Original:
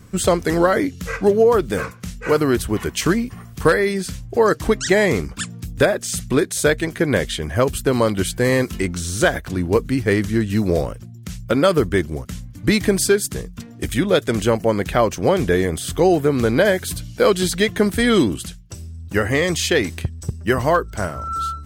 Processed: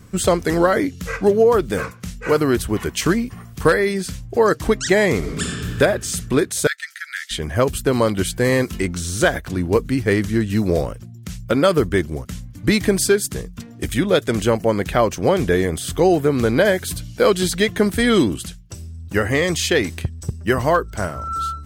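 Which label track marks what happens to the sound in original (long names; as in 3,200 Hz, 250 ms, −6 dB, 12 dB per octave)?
5.170000	5.670000	thrown reverb, RT60 2.3 s, DRR −2 dB
6.670000	7.310000	Chebyshev high-pass with heavy ripple 1,300 Hz, ripple 6 dB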